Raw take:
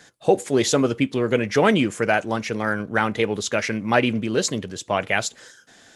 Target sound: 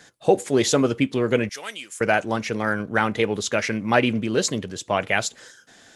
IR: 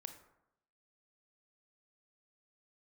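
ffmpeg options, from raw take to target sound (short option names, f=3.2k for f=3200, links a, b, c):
-filter_complex "[0:a]asettb=1/sr,asplit=3[a][b][c];[a]atrim=end=1.494[d];[b]atrim=start=1.49:end=2.01,asetpts=PTS-STARTPTS,afade=t=in:d=0.004:c=qsin,afade=t=out:st=0.516:d=0.004:c=qsin,aderivative[e];[c]atrim=start=2.006[f];[d][e]acrossfade=d=0.004:c1=hsin:c2=qsin[g];[g][f]acrossfade=d=0.004:c1=qsin:c2=hsin"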